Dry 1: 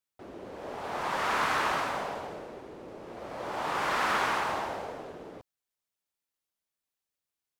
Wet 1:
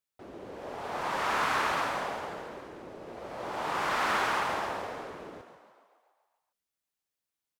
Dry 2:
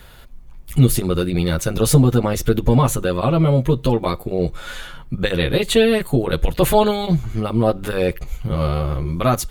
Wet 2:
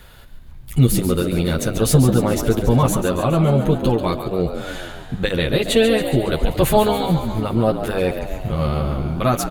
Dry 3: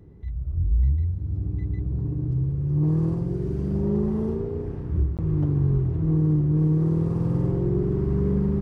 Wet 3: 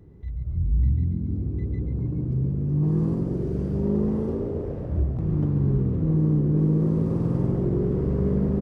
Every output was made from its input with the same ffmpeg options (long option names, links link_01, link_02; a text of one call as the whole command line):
ffmpeg -i in.wav -filter_complex "[0:a]asplit=9[link_01][link_02][link_03][link_04][link_05][link_06][link_07][link_08][link_09];[link_02]adelay=139,afreqshift=57,volume=-9.5dB[link_10];[link_03]adelay=278,afreqshift=114,volume=-13.7dB[link_11];[link_04]adelay=417,afreqshift=171,volume=-17.8dB[link_12];[link_05]adelay=556,afreqshift=228,volume=-22dB[link_13];[link_06]adelay=695,afreqshift=285,volume=-26.1dB[link_14];[link_07]adelay=834,afreqshift=342,volume=-30.3dB[link_15];[link_08]adelay=973,afreqshift=399,volume=-34.4dB[link_16];[link_09]adelay=1112,afreqshift=456,volume=-38.6dB[link_17];[link_01][link_10][link_11][link_12][link_13][link_14][link_15][link_16][link_17]amix=inputs=9:normalize=0,volume=-1dB" out.wav